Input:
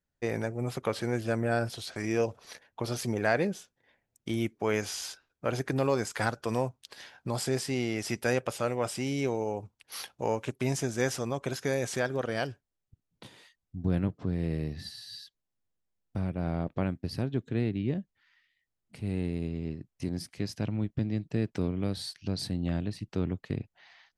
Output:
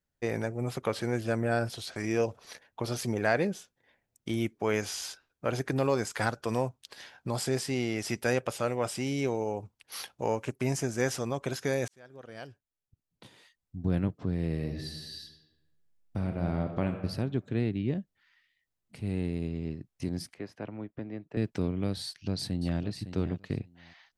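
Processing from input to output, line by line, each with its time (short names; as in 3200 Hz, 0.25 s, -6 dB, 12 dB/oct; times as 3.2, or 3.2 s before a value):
10.4–11.07 bell 3600 Hz -7 dB 0.37 oct
11.88–13.99 fade in
14.51–16.9 reverb throw, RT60 1.2 s, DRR 5 dB
20.34–21.37 three-band isolator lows -14 dB, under 310 Hz, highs -19 dB, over 2300 Hz
22.05–22.81 echo throw 0.56 s, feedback 15%, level -11 dB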